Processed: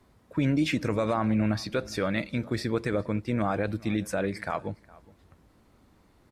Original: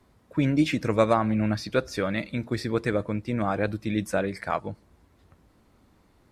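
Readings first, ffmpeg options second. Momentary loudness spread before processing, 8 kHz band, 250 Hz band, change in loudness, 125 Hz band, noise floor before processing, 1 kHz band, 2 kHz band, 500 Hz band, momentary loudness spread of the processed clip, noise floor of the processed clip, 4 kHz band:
8 LU, -0.5 dB, -1.5 dB, -2.0 dB, -1.0 dB, -62 dBFS, -3.5 dB, -2.0 dB, -3.5 dB, 8 LU, -62 dBFS, -0.5 dB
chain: -filter_complex "[0:a]alimiter=limit=0.15:level=0:latency=1:release=31,asplit=2[s0][s1];[s1]adelay=414,volume=0.0794,highshelf=f=4000:g=-9.32[s2];[s0][s2]amix=inputs=2:normalize=0"

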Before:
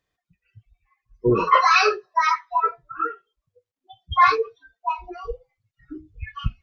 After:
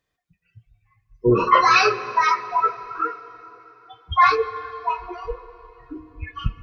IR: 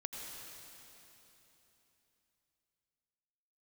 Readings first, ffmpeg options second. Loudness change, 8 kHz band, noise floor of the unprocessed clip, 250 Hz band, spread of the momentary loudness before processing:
+1.0 dB, no reading, under -85 dBFS, +2.0 dB, 19 LU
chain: -filter_complex "[0:a]asplit=2[s0][s1];[1:a]atrim=start_sample=2205,highshelf=f=2900:g=-8,adelay=25[s2];[s1][s2]afir=irnorm=-1:irlink=0,volume=0.335[s3];[s0][s3]amix=inputs=2:normalize=0,volume=1.12"

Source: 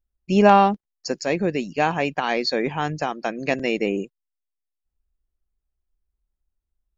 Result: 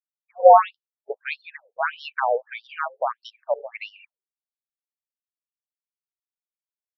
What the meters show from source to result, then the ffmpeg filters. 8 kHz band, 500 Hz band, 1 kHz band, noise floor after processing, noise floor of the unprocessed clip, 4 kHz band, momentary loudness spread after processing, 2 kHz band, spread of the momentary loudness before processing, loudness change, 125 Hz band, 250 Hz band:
no reading, +0.5 dB, +1.0 dB, under -85 dBFS, -83 dBFS, -11.0 dB, 23 LU, -4.0 dB, 13 LU, +0.5 dB, under -40 dB, under -40 dB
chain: -filter_complex "[0:a]agate=range=0.0224:threshold=0.0501:ratio=3:detection=peak,bandreject=f=50:t=h:w=6,bandreject=f=100:t=h:w=6,bandreject=f=150:t=h:w=6,bandreject=f=200:t=h:w=6,bandreject=f=250:t=h:w=6,bandreject=f=300:t=h:w=6,asplit=2[s0][s1];[s1]adynamicsmooth=sensitivity=4:basefreq=4300,volume=0.794[s2];[s0][s2]amix=inputs=2:normalize=0,afreqshift=-86,afftfilt=real='re*between(b*sr/1024,590*pow(4100/590,0.5+0.5*sin(2*PI*1.6*pts/sr))/1.41,590*pow(4100/590,0.5+0.5*sin(2*PI*1.6*pts/sr))*1.41)':imag='im*between(b*sr/1024,590*pow(4100/590,0.5+0.5*sin(2*PI*1.6*pts/sr))/1.41,590*pow(4100/590,0.5+0.5*sin(2*PI*1.6*pts/sr))*1.41)':win_size=1024:overlap=0.75"

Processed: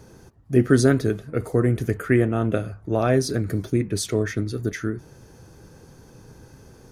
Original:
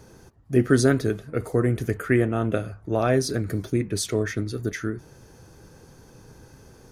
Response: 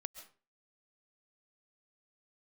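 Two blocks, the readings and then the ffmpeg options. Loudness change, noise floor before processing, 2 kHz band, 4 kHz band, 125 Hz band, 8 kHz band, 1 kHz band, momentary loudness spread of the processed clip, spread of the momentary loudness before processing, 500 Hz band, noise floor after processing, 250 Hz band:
+1.5 dB, -51 dBFS, 0.0 dB, 0.0 dB, +2.5 dB, 0.0 dB, +0.5 dB, 10 LU, 10 LU, +1.5 dB, -49 dBFS, +2.0 dB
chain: -af "equalizer=f=150:w=0.37:g=2.5"

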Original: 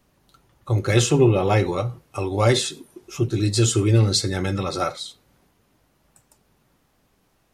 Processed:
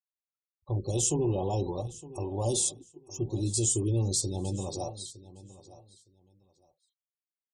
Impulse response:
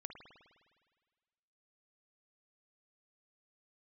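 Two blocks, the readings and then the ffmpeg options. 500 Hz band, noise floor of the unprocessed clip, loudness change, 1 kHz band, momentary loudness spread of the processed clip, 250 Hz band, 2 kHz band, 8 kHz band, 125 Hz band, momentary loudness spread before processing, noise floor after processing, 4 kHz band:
-11.0 dB, -65 dBFS, -9.0 dB, -12.0 dB, 12 LU, -10.0 dB, under -25 dB, -1.5 dB, -10.5 dB, 12 LU, under -85 dBFS, -12.5 dB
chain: -af "afftfilt=real='re*gte(hypot(re,im),0.0178)':imag='im*gte(hypot(re,im),0.0178)':win_size=1024:overlap=0.75,equalizer=f=125:t=o:w=1:g=-10,equalizer=f=250:t=o:w=1:g=-6,equalizer=f=500:t=o:w=1:g=-8,equalizer=f=1000:t=o:w=1:g=-5,equalizer=f=2000:t=o:w=1:g=-9,equalizer=f=4000:t=o:w=1:g=-12,equalizer=f=8000:t=o:w=1:g=3,alimiter=limit=0.0944:level=0:latency=1:release=15,asuperstop=centerf=1700:order=12:qfactor=0.95,aecho=1:1:912|1824:0.133|0.0267,adynamicequalizer=threshold=0.00631:dfrequency=4700:dqfactor=0.7:tfrequency=4700:tqfactor=0.7:attack=5:release=100:ratio=0.375:range=2:mode=boostabove:tftype=highshelf"

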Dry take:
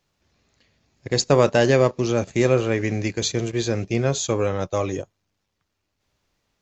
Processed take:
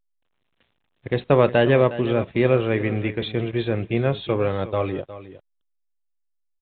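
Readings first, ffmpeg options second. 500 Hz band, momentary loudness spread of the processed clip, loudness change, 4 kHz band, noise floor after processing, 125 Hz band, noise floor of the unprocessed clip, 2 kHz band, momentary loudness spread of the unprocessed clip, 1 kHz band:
0.0 dB, 11 LU, -0.5 dB, -5.0 dB, -72 dBFS, 0.0 dB, -77 dBFS, 0.0 dB, 8 LU, 0.0 dB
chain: -af "aecho=1:1:360:0.188,acrusher=bits=8:mix=0:aa=0.5" -ar 8000 -c:a pcm_alaw

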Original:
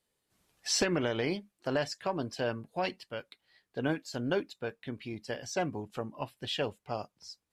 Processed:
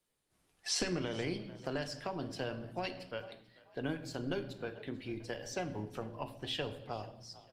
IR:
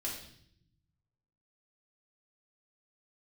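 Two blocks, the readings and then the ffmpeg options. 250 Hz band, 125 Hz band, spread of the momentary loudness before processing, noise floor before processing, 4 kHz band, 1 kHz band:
-4.5 dB, -3.0 dB, 12 LU, -84 dBFS, -3.5 dB, -6.0 dB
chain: -filter_complex "[0:a]asplit=3[s0][s1][s2];[s1]adelay=441,afreqshift=41,volume=0.0794[s3];[s2]adelay=882,afreqshift=82,volume=0.0269[s4];[s0][s3][s4]amix=inputs=3:normalize=0,asplit=2[s5][s6];[1:a]atrim=start_sample=2205,highshelf=f=8200:g=-9[s7];[s6][s7]afir=irnorm=-1:irlink=0,volume=0.531[s8];[s5][s8]amix=inputs=2:normalize=0,asubboost=boost=3:cutoff=70,acrossover=split=180|3000[s9][s10][s11];[s10]acompressor=threshold=0.02:ratio=3[s12];[s9][s12][s11]amix=inputs=3:normalize=0,volume=0.708" -ar 48000 -c:a libopus -b:a 32k

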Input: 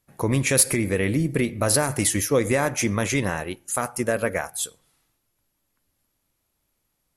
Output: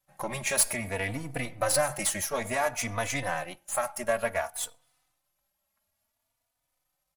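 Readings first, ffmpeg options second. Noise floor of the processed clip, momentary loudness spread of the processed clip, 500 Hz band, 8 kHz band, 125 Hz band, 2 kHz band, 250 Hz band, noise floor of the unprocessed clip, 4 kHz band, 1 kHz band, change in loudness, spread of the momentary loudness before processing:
-81 dBFS, 10 LU, -6.5 dB, -6.0 dB, -13.0 dB, -4.5 dB, -14.0 dB, -75 dBFS, -5.0 dB, -2.0 dB, -6.5 dB, 9 LU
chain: -filter_complex "[0:a]aeval=exprs='if(lt(val(0),0),0.447*val(0),val(0))':c=same,lowshelf=f=510:t=q:w=3:g=-6.5,asplit=2[s0][s1];[s1]adelay=3.4,afreqshift=0.57[s2];[s0][s2]amix=inputs=2:normalize=1"

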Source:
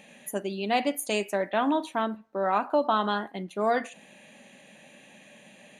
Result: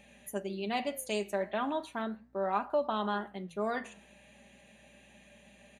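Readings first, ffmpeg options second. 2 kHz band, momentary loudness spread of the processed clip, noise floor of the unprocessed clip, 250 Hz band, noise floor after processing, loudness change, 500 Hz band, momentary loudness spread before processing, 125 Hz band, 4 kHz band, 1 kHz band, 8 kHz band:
-7.0 dB, 8 LU, -54 dBFS, -7.0 dB, -60 dBFS, -6.5 dB, -6.0 dB, 8 LU, no reading, -7.0 dB, -7.5 dB, -7.0 dB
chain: -af "aecho=1:1:5:0.44,aeval=exprs='val(0)+0.001*(sin(2*PI*60*n/s)+sin(2*PI*2*60*n/s)/2+sin(2*PI*3*60*n/s)/3+sin(2*PI*4*60*n/s)/4+sin(2*PI*5*60*n/s)/5)':c=same,flanger=delay=3.1:depth=9.7:regen=-89:speed=0.37:shape=triangular,volume=0.708"

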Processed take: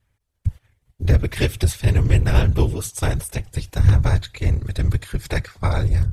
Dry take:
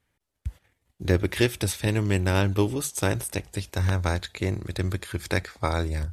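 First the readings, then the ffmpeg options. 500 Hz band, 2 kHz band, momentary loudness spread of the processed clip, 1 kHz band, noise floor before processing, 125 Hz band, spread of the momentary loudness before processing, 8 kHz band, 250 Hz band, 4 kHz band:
-0.5 dB, +0.5 dB, 11 LU, +0.5 dB, -79 dBFS, +8.5 dB, 9 LU, +0.5 dB, 0.0 dB, +0.5 dB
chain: -af "afftfilt=real='hypot(re,im)*cos(2*PI*random(0))':imag='hypot(re,im)*sin(2*PI*random(1))':win_size=512:overlap=0.75,lowshelf=f=140:t=q:w=1.5:g=9.5,volume=2.11"

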